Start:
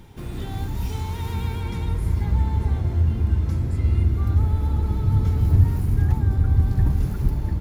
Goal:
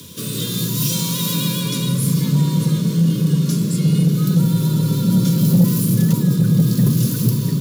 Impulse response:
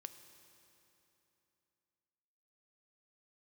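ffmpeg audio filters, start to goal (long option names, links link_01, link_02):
-af "aexciter=amount=4.4:drive=8.4:freq=2900,asuperstop=centerf=680:order=8:qfactor=1.9,afreqshift=84,asoftclip=type=tanh:threshold=-10dB,volume=4.5dB"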